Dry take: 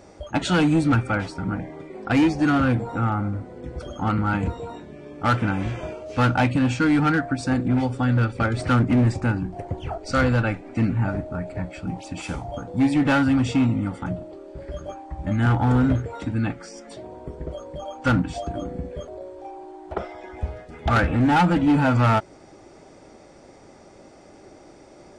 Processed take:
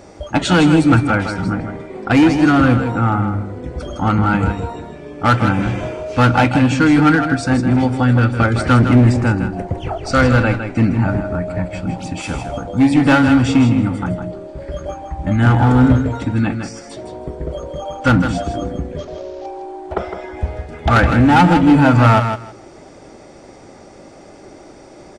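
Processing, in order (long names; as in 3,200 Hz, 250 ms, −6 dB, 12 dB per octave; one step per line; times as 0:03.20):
0:18.98–0:19.46: variable-slope delta modulation 32 kbit/s
repeating echo 159 ms, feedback 16%, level −8 dB
level +7 dB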